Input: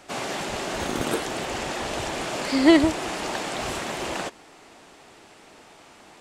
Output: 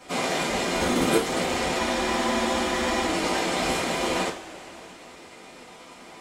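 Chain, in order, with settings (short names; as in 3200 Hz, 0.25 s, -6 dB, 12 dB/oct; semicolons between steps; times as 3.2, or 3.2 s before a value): transient shaper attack 0 dB, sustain -8 dB; two-slope reverb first 0.24 s, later 3.1 s, from -22 dB, DRR -8.5 dB; spectral freeze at 1.82, 1.25 s; gain -4.5 dB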